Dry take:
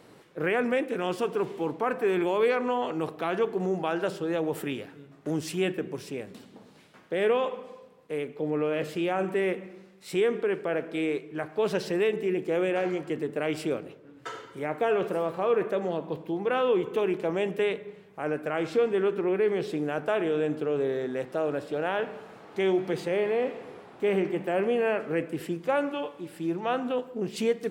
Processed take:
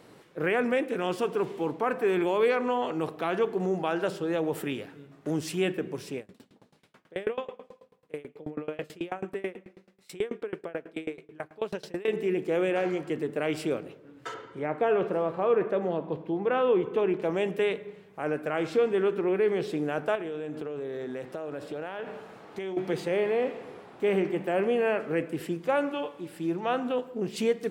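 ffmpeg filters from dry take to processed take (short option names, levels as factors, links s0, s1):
-filter_complex "[0:a]asettb=1/sr,asplit=3[s0][s1][s2];[s0]atrim=end=6.184[s3];[s1]atrim=start=6.18:end=12.08,asetpts=PTS-STARTPTS,afade=t=in:d=0.004:c=qsin,afade=t=out:st=5.896:d=0.004:c=qsin,aeval=exprs='val(0)*pow(10,-26*if(lt(mod(9.2*n/s,1),2*abs(9.2)/1000),1-mod(9.2*n/s,1)/(2*abs(9.2)/1000),(mod(9.2*n/s,1)-2*abs(9.2)/1000)/(1-2*abs(9.2)/1000))/20)':c=same[s4];[s2]atrim=start=12.076[s5];[s3][s4]acrossfade=d=0.004:c1=hsin:c2=qsin[s6];[s6][s5]acrossfade=d=0.004:c1=qsin:c2=hsin,asettb=1/sr,asplit=3[s7][s8][s9];[s7]atrim=end=14.344[s10];[s8]atrim=start=14.34:end=17.22,asetpts=PTS-STARTPTS,afade=t=in:d=0.004:c=qsin,afade=t=out:st=2.876:d=0.004:c=qsin,aemphasis=mode=reproduction:type=75fm[s11];[s9]atrim=start=17.216[s12];[s10][s11]acrossfade=d=0.004:c1=hsin:c2=qsin[s13];[s13][s12]acrossfade=d=0.004:c1=qsin:c2=hsin,asettb=1/sr,asplit=3[s14][s15][s16];[s14]atrim=end=20.154[s17];[s15]atrim=start=20.15:end=22.77,asetpts=PTS-STARTPTS,afade=t=in:d=0.004:c=qsin,afade=t=out:st=2.616:d=0.004:c=qsin,acompressor=threshold=0.0282:ratio=10:attack=3.2:release=140:knee=1:detection=peak[s18];[s16]atrim=start=22.766[s19];[s17][s18]acrossfade=d=0.004:c1=hsin:c2=qsin[s20];[s20][s19]acrossfade=d=0.004:c1=qsin:c2=hsin"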